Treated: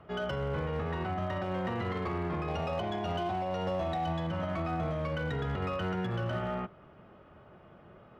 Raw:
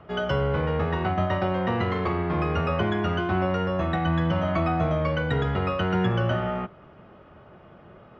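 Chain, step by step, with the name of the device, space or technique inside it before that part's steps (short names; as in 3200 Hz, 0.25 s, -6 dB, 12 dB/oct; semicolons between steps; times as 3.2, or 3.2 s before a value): 2.48–4.27 EQ curve 430 Hz 0 dB, 720 Hz +11 dB, 1400 Hz -5 dB, 3500 Hz +7 dB; limiter into clipper (limiter -19.5 dBFS, peak gain reduction 10 dB; hard clip -22 dBFS, distortion -22 dB); gain -5.5 dB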